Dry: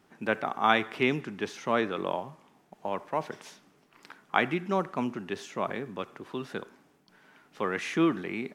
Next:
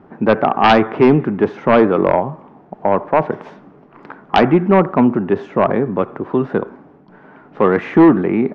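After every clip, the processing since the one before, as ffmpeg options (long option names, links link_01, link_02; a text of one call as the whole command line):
ffmpeg -i in.wav -af "lowpass=1000,aeval=exprs='0.251*sin(PI/2*2.51*val(0)/0.251)':channel_layout=same,volume=8dB" out.wav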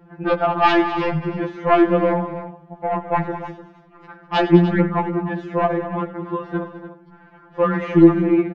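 ffmpeg -i in.wav -af "aecho=1:1:92|103|203|297:0.119|0.126|0.211|0.224,afftfilt=real='re*2.83*eq(mod(b,8),0)':imag='im*2.83*eq(mod(b,8),0)':win_size=2048:overlap=0.75,volume=-2dB" out.wav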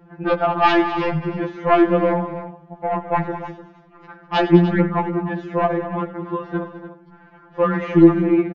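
ffmpeg -i in.wav -af "aresample=16000,aresample=44100" out.wav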